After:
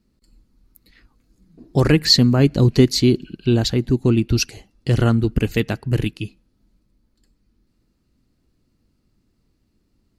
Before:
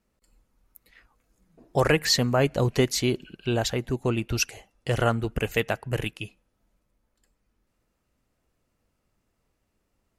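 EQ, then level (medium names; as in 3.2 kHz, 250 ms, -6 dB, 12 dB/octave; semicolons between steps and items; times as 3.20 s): resonant low shelf 420 Hz +9.5 dB, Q 1.5; peaking EQ 4.4 kHz +10.5 dB 0.49 oct; 0.0 dB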